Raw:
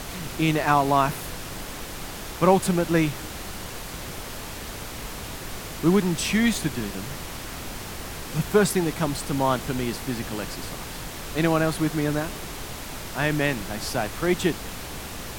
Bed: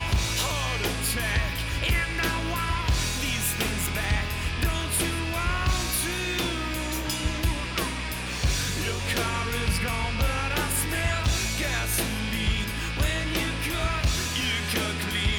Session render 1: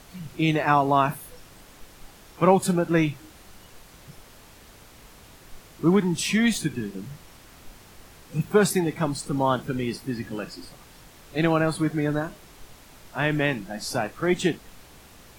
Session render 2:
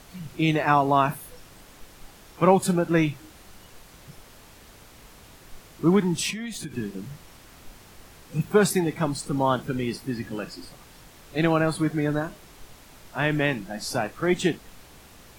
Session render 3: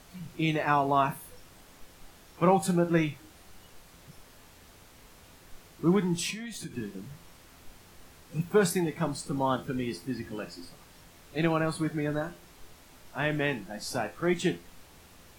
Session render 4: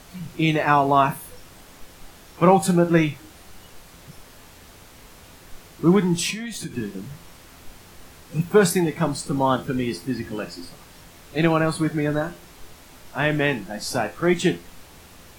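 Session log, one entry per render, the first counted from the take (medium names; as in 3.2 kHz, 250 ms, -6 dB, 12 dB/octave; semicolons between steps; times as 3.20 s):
noise print and reduce 14 dB
6.30–6.74 s: compression 10:1, threshold -30 dBFS
feedback comb 86 Hz, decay 0.28 s, harmonics all, mix 60%
trim +7.5 dB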